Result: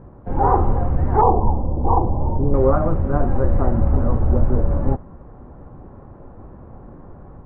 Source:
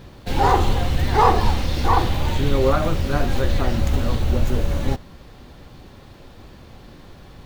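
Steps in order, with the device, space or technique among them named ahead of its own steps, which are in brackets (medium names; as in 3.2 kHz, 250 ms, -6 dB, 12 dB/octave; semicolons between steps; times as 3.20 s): 1.21–2.54 s: Chebyshev low-pass 950 Hz, order 4; action camera in a waterproof case (low-pass 1.2 kHz 24 dB/octave; level rider gain up to 3.5 dB; AAC 64 kbps 16 kHz)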